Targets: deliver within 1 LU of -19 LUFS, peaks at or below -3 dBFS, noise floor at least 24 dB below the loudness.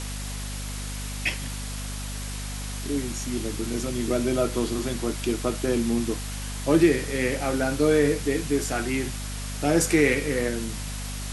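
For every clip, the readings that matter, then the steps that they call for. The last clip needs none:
hum 50 Hz; harmonics up to 250 Hz; hum level -31 dBFS; noise floor -33 dBFS; noise floor target -50 dBFS; loudness -26.0 LUFS; peak -7.0 dBFS; loudness target -19.0 LUFS
-> notches 50/100/150/200/250 Hz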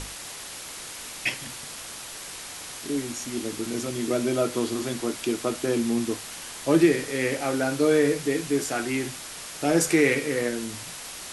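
hum none; noise floor -39 dBFS; noise floor target -51 dBFS
-> denoiser 12 dB, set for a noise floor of -39 dBFS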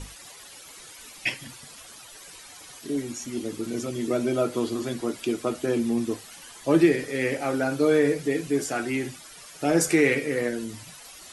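noise floor -46 dBFS; noise floor target -50 dBFS
-> denoiser 6 dB, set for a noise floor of -46 dBFS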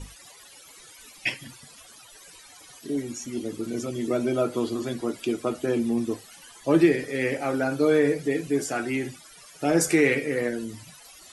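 noise floor -50 dBFS; loudness -26.0 LUFS; peak -7.0 dBFS; loudness target -19.0 LUFS
-> gain +7 dB; limiter -3 dBFS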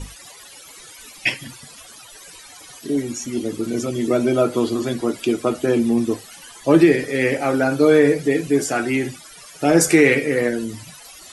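loudness -19.0 LUFS; peak -3.0 dBFS; noise floor -43 dBFS

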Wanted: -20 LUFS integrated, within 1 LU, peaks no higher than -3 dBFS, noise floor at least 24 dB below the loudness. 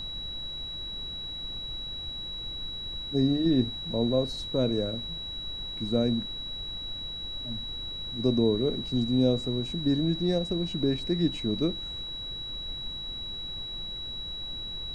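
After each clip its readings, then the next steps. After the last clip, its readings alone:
steady tone 3900 Hz; tone level -35 dBFS; noise floor -37 dBFS; noise floor target -54 dBFS; loudness -30.0 LUFS; peak -12.0 dBFS; loudness target -20.0 LUFS
-> notch 3900 Hz, Q 30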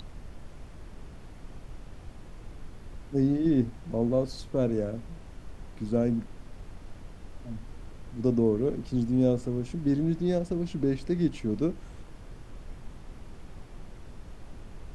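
steady tone none; noise floor -47 dBFS; noise floor target -53 dBFS
-> noise print and reduce 6 dB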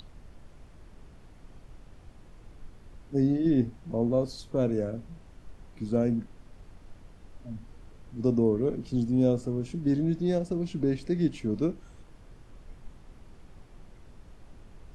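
noise floor -53 dBFS; loudness -28.5 LUFS; peak -12.5 dBFS; loudness target -20.0 LUFS
-> gain +8.5 dB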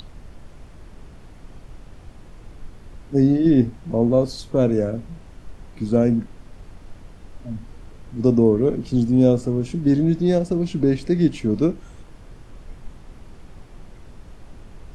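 loudness -20.0 LUFS; peak -4.0 dBFS; noise floor -44 dBFS

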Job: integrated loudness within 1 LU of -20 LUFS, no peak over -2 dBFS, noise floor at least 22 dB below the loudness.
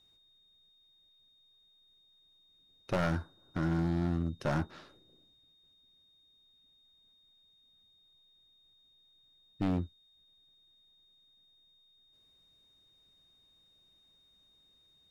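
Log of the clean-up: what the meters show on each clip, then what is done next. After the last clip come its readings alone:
clipped 0.9%; flat tops at -25.5 dBFS; steady tone 3700 Hz; tone level -64 dBFS; loudness -34.0 LUFS; peak -25.5 dBFS; loudness target -20.0 LUFS
-> clip repair -25.5 dBFS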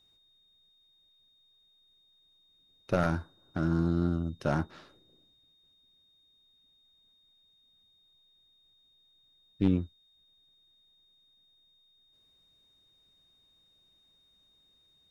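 clipped 0.0%; steady tone 3700 Hz; tone level -64 dBFS
-> notch 3700 Hz, Q 30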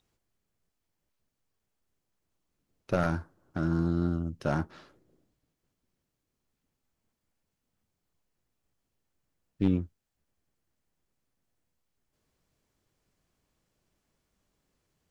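steady tone none; loudness -31.0 LUFS; peak -16.5 dBFS; loudness target -20.0 LUFS
-> gain +11 dB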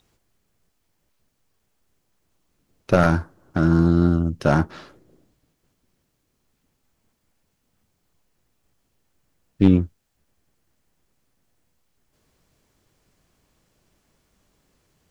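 loudness -20.0 LUFS; peak -5.5 dBFS; noise floor -72 dBFS

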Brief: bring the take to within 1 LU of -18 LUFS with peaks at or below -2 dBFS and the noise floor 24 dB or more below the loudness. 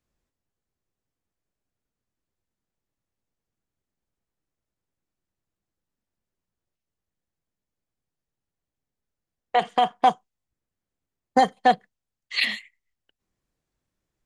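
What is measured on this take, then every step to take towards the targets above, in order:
loudness -23.0 LUFS; peak -5.5 dBFS; loudness target -18.0 LUFS
-> gain +5 dB; limiter -2 dBFS

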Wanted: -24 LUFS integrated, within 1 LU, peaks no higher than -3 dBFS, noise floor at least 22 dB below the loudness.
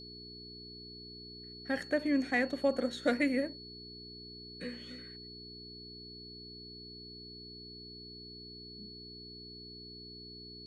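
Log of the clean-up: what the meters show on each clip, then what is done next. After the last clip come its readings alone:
hum 60 Hz; harmonics up to 420 Hz; hum level -50 dBFS; steady tone 4400 Hz; tone level -48 dBFS; loudness -38.5 LUFS; peak -16.0 dBFS; loudness target -24.0 LUFS
-> de-hum 60 Hz, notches 7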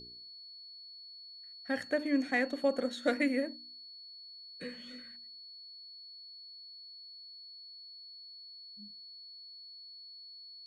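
hum none; steady tone 4400 Hz; tone level -48 dBFS
-> notch 4400 Hz, Q 30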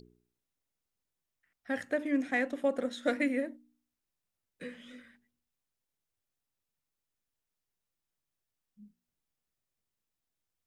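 steady tone none; loudness -32.5 LUFS; peak -17.0 dBFS; loudness target -24.0 LUFS
-> gain +8.5 dB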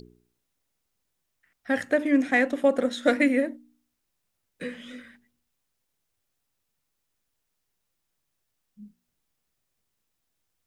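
loudness -24.0 LUFS; peak -8.5 dBFS; noise floor -79 dBFS

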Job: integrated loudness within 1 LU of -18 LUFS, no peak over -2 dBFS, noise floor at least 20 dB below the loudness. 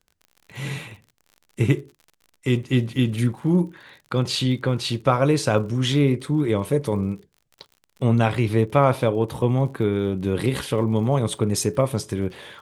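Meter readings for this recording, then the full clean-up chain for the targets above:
ticks 53/s; loudness -22.5 LUFS; peak -4.0 dBFS; loudness target -18.0 LUFS
-> de-click; gain +4.5 dB; limiter -2 dBFS

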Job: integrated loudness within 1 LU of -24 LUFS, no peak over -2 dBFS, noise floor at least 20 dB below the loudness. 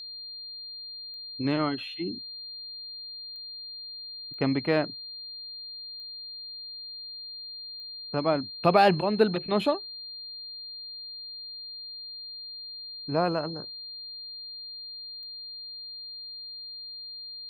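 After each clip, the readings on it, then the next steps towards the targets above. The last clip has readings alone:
clicks 6; steady tone 4200 Hz; tone level -38 dBFS; loudness -31.5 LUFS; peak -8.0 dBFS; loudness target -24.0 LUFS
-> de-click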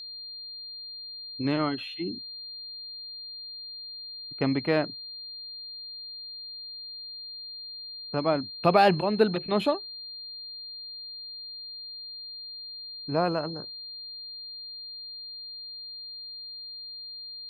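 clicks 0; steady tone 4200 Hz; tone level -38 dBFS
-> notch 4200 Hz, Q 30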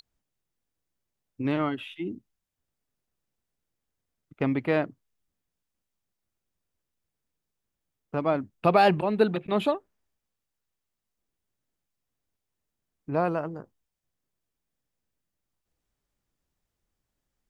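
steady tone none; loudness -27.0 LUFS; peak -8.5 dBFS; loudness target -24.0 LUFS
-> gain +3 dB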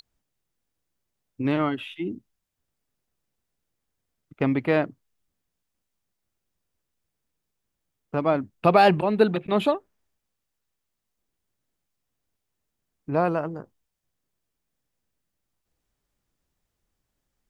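loudness -24.0 LUFS; peak -5.5 dBFS; noise floor -82 dBFS

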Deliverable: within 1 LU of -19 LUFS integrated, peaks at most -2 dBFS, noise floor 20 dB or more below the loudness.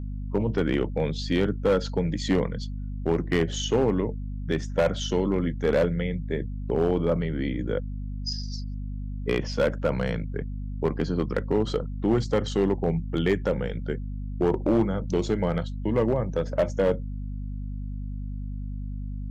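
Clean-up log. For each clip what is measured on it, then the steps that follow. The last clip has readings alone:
clipped 1.1%; flat tops at -15.5 dBFS; hum 50 Hz; harmonics up to 250 Hz; hum level -30 dBFS; loudness -27.5 LUFS; peak -15.5 dBFS; loudness target -19.0 LUFS
-> clip repair -15.5 dBFS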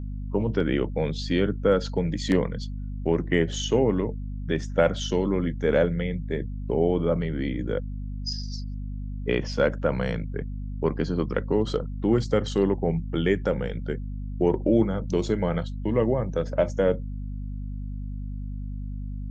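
clipped 0.0%; hum 50 Hz; harmonics up to 250 Hz; hum level -30 dBFS
-> notches 50/100/150/200/250 Hz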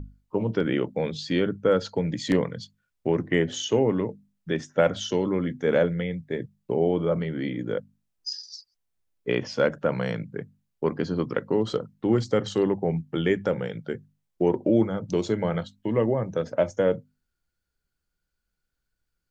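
hum none; loudness -26.5 LUFS; peak -8.0 dBFS; loudness target -19.0 LUFS
-> gain +7.5 dB; limiter -2 dBFS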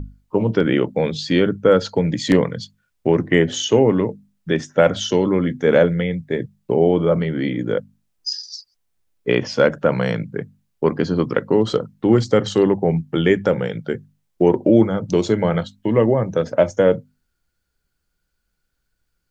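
loudness -19.0 LUFS; peak -2.0 dBFS; noise floor -73 dBFS

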